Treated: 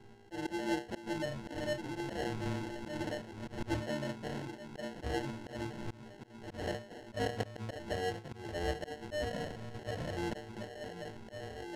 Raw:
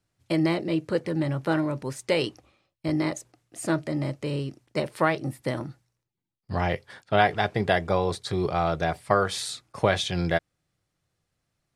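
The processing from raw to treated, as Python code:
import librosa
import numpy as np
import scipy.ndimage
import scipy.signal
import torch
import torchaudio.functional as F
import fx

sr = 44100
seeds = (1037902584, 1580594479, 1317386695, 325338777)

y = fx.dmg_wind(x, sr, seeds[0], corner_hz=230.0, level_db=-40.0)
y = fx.hum_notches(y, sr, base_hz=60, count=4)
y = fx.dmg_buzz(y, sr, base_hz=400.0, harmonics=22, level_db=-47.0, tilt_db=-5, odd_only=False)
y = fx.stiff_resonator(y, sr, f0_hz=110.0, decay_s=0.35, stiffness=0.008)
y = fx.echo_stepped(y, sr, ms=727, hz=190.0, octaves=0.7, feedback_pct=70, wet_db=-7.0)
y = fx.sample_hold(y, sr, seeds[1], rate_hz=1200.0, jitter_pct=0)
y = fx.rider(y, sr, range_db=4, speed_s=2.0)
y = fx.auto_swell(y, sr, attack_ms=171.0)
y = fx.air_absorb(y, sr, metres=57.0)
y = fx.sustainer(y, sr, db_per_s=38.0, at=(1.98, 2.97))
y = y * librosa.db_to_amplitude(2.0)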